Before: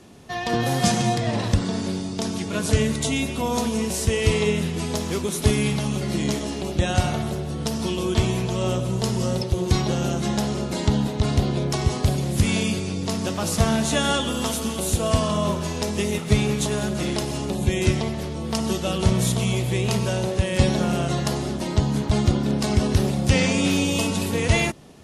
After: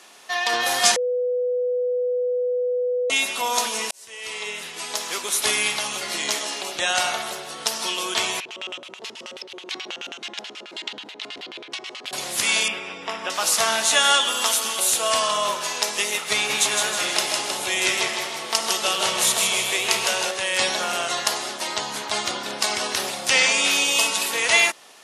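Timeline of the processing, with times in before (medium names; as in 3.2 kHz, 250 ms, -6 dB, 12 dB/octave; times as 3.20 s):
0.96–3.10 s: bleep 495 Hz -15.5 dBFS
3.91–5.45 s: fade in
8.40–12.13 s: LFO band-pass square 9.3 Hz 310–2800 Hz
12.68–13.30 s: Savitzky-Golay filter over 25 samples
16.34–20.31 s: modulated delay 158 ms, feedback 47%, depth 77 cents, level -4 dB
whole clip: high-pass 1 kHz 12 dB/octave; trim +8 dB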